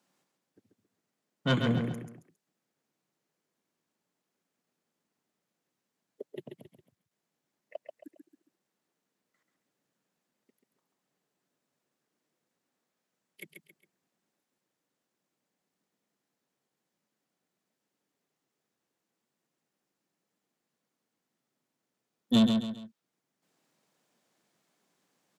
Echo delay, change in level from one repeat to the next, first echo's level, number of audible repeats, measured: 0.136 s, -9.0 dB, -5.5 dB, 3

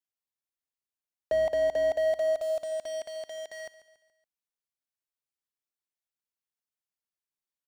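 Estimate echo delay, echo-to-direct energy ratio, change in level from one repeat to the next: 0.141 s, -14.5 dB, -6.5 dB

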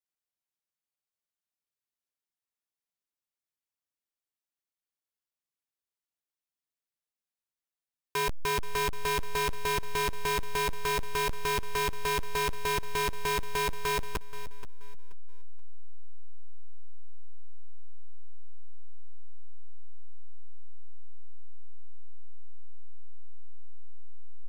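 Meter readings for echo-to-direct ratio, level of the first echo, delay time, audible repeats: -14.0 dB, -14.5 dB, 0.479 s, 2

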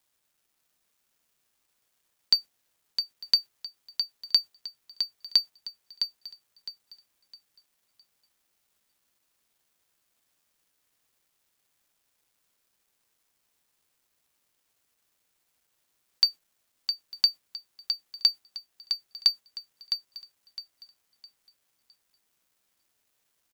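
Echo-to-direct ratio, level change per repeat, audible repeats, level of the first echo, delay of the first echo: -7.0 dB, -11.0 dB, 3, -7.5 dB, 0.66 s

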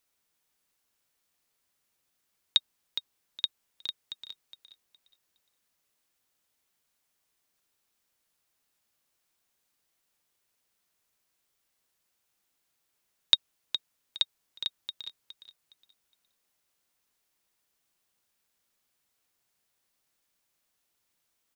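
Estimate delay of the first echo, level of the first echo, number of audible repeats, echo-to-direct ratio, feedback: 0.414 s, -10.5 dB, 3, -10.0 dB, 25%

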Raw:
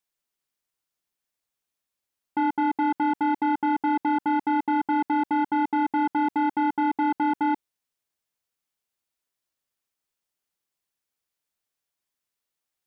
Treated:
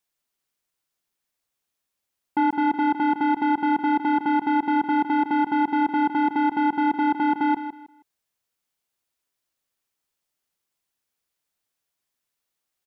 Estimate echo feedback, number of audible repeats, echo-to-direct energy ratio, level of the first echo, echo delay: 25%, 2, -10.5 dB, -11.0 dB, 0.159 s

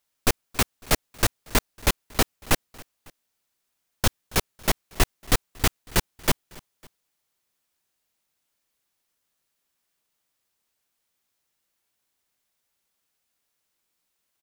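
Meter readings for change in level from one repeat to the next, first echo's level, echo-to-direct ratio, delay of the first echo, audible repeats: -5.0 dB, -23.5 dB, -22.5 dB, 0.276 s, 2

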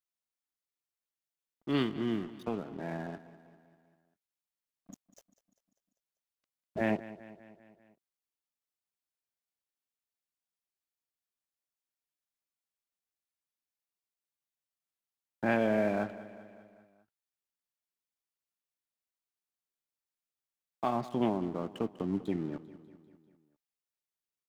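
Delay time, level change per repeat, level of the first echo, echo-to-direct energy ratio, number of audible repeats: 0.197 s, -4.5 dB, -16.5 dB, -14.5 dB, 4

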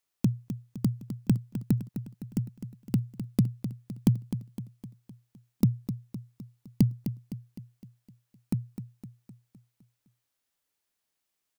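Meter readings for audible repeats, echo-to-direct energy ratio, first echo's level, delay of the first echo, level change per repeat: 5, -9.0 dB, -10.5 dB, 0.256 s, -5.5 dB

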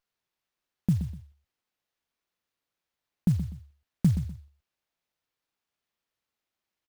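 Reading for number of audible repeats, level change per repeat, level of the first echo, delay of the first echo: 2, -11.5 dB, -11.0 dB, 0.124 s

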